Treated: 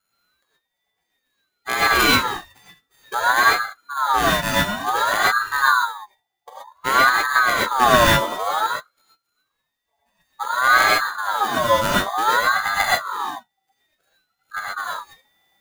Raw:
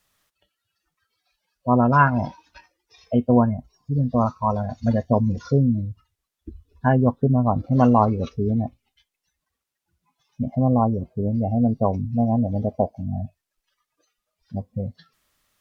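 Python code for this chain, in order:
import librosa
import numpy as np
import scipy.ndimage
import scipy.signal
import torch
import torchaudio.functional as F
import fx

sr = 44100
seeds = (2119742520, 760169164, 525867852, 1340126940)

p1 = np.r_[np.sort(x[:len(x) // 16 * 16].reshape(-1, 16), axis=1).ravel(), x[len(x) // 16 * 16:]]
p2 = fx.rev_gated(p1, sr, seeds[0], gate_ms=150, shape='rising', drr_db=-6.5)
p3 = fx.rider(p2, sr, range_db=10, speed_s=2.0)
p4 = p2 + F.gain(torch.from_numpy(p3), -1.5).numpy()
p5 = fx.ring_lfo(p4, sr, carrier_hz=1100.0, swing_pct=30, hz=0.55)
y = F.gain(torch.from_numpy(p5), -7.5).numpy()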